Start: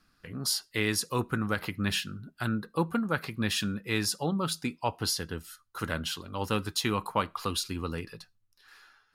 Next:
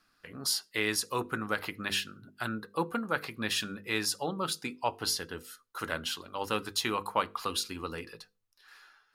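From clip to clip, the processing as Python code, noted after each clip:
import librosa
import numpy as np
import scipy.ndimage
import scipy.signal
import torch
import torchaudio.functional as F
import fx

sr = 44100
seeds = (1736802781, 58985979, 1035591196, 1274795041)

y = fx.bass_treble(x, sr, bass_db=-10, treble_db=-1)
y = fx.hum_notches(y, sr, base_hz=50, count=10)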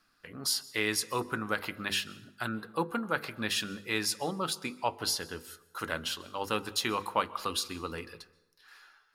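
y = fx.rev_plate(x, sr, seeds[0], rt60_s=0.99, hf_ratio=0.65, predelay_ms=115, drr_db=19.5)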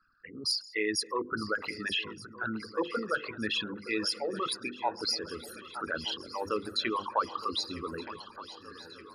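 y = fx.envelope_sharpen(x, sr, power=3.0)
y = fx.echo_swing(y, sr, ms=1222, ratio=3, feedback_pct=57, wet_db=-16)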